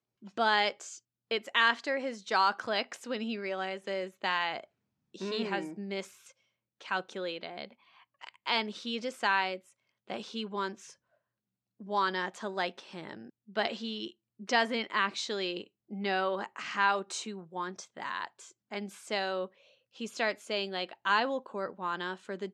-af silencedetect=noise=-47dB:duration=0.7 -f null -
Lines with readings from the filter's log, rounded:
silence_start: 10.92
silence_end: 11.80 | silence_duration: 0.88